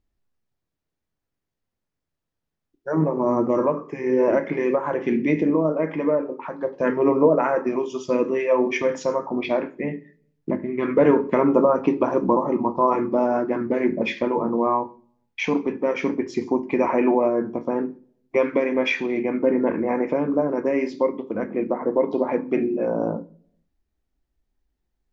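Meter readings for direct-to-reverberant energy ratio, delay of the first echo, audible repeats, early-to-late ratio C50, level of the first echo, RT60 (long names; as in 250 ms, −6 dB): 9.5 dB, no echo audible, no echo audible, 19.5 dB, no echo audible, 0.50 s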